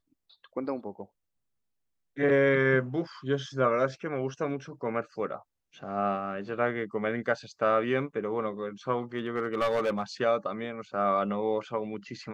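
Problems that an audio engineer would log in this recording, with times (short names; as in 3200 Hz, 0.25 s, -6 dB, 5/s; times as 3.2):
9.16–10.03 clipped -23 dBFS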